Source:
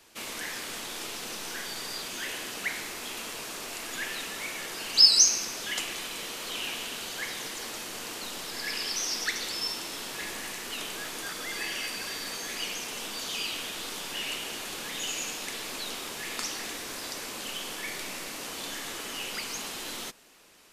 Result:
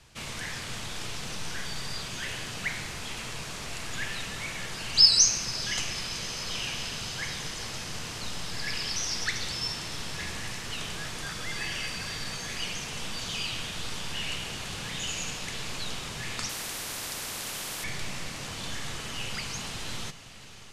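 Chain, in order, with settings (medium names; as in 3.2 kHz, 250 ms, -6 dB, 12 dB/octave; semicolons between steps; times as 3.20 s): low-pass 8.5 kHz 12 dB/octave; resonant low shelf 190 Hz +14 dB, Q 1.5; on a send: echo that smears into a reverb 538 ms, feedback 75%, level -16 dB; 16.49–17.84 s: on the sum: spectrum-flattening compressor 4:1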